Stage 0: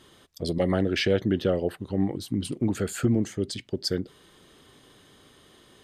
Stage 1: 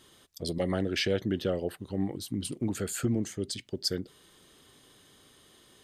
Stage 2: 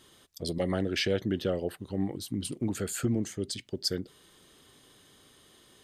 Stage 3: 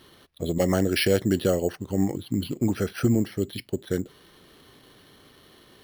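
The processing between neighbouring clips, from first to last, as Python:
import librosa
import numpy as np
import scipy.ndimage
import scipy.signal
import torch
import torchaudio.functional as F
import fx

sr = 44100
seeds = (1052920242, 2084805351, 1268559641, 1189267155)

y1 = fx.high_shelf(x, sr, hz=4300.0, db=8.5)
y1 = F.gain(torch.from_numpy(y1), -5.5).numpy()
y2 = y1
y3 = np.repeat(scipy.signal.resample_poly(y2, 1, 6), 6)[:len(y2)]
y3 = F.gain(torch.from_numpy(y3), 7.0).numpy()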